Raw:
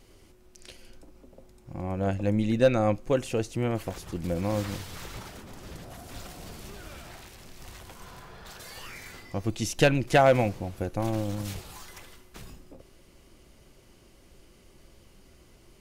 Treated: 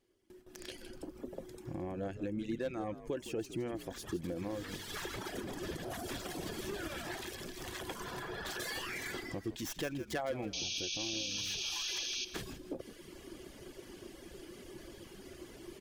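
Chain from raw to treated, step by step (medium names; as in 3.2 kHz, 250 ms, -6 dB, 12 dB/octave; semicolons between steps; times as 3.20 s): tracing distortion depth 0.14 ms; reverb removal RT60 1.1 s; compression 4:1, threshold -45 dBFS, peak gain reduction 24 dB; painted sound noise, 10.53–12.25 s, 2.3–6.6 kHz -40 dBFS; peak limiter -37 dBFS, peak gain reduction 10.5 dB; bass shelf 81 Hz -10 dB; small resonant body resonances 350/1700/3300 Hz, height 9 dB, ringing for 25 ms; frequency-shifting echo 161 ms, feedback 34%, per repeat -66 Hz, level -13 dB; level rider gain up to 7 dB; gate with hold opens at -44 dBFS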